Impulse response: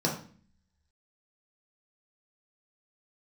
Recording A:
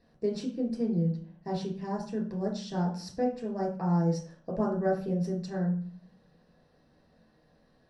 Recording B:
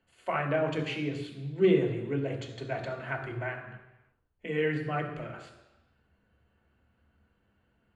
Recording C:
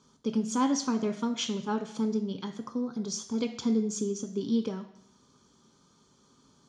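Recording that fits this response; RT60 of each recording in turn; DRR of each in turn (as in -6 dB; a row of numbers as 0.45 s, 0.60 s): A; 0.45 s, 1.0 s, 0.70 s; -2.5 dB, 1.5 dB, 6.5 dB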